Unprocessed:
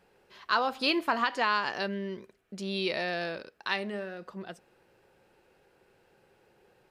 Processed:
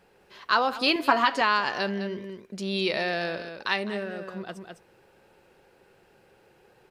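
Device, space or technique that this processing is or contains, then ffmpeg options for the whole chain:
ducked delay: -filter_complex "[0:a]asettb=1/sr,asplit=3[a][b][c];[a]atrim=end=0.954[d];[b]atrim=start=0.95:end=1.41,asetpts=PTS-STARTPTS,afade=t=in:d=0.004:c=qsin,afade=t=out:st=0.456:d=0.004:c=qsin,aecho=1:1:7.2:0.85,atrim=end_sample=20286[e];[c]atrim=start=1.406[f];[d][e]acrossfade=d=0.004:c1=hsin:c2=qsin[g];[g][f]acrossfade=d=0.004:c1=qsin:c2=hsin,asplit=3[h][i][j];[i]adelay=206,volume=-5dB[k];[j]apad=whole_len=313802[l];[k][l]sidechaincompress=threshold=-36dB:ratio=8:attack=6.8:release=490[m];[h][m]amix=inputs=2:normalize=0,volume=4dB"

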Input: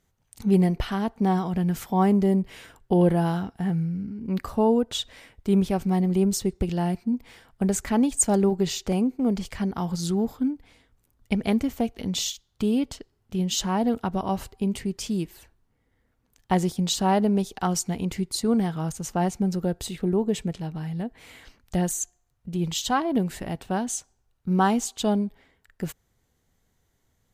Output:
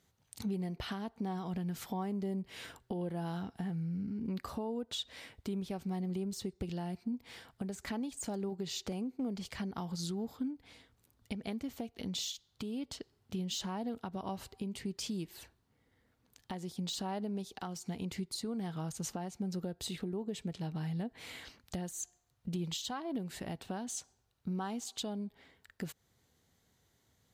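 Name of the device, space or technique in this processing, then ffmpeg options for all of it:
broadcast voice chain: -af "highpass=73,deesser=0.55,acompressor=threshold=-34dB:ratio=4,equalizer=f=4.1k:t=o:w=0.8:g=5,alimiter=level_in=3dB:limit=-24dB:level=0:latency=1:release=377,volume=-3dB,volume=-1dB"

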